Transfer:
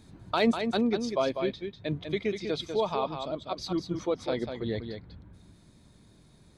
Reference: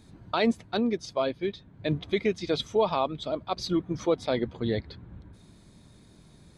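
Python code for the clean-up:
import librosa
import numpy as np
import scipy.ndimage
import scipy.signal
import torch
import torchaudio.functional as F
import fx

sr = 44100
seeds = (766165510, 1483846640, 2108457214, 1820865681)

y = fx.fix_declip(x, sr, threshold_db=-15.0)
y = fx.fix_echo_inverse(y, sr, delay_ms=196, level_db=-7.0)
y = fx.fix_level(y, sr, at_s=1.66, step_db=4.0)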